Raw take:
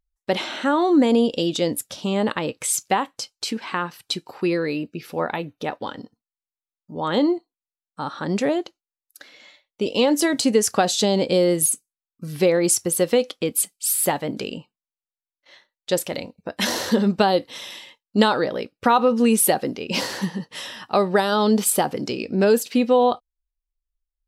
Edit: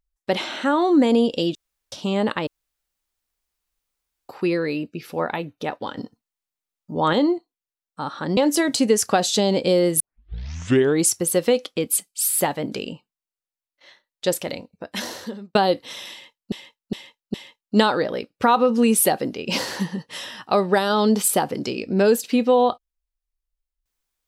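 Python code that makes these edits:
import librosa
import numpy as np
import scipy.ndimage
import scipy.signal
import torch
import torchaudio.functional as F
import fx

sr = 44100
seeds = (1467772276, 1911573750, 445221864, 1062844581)

y = fx.edit(x, sr, fx.room_tone_fill(start_s=1.55, length_s=0.37),
    fx.room_tone_fill(start_s=2.47, length_s=1.82),
    fx.clip_gain(start_s=5.97, length_s=1.16, db=5.5),
    fx.cut(start_s=8.37, length_s=1.65),
    fx.tape_start(start_s=11.65, length_s=1.06),
    fx.fade_out_span(start_s=16.07, length_s=1.13),
    fx.repeat(start_s=17.76, length_s=0.41, count=4), tone=tone)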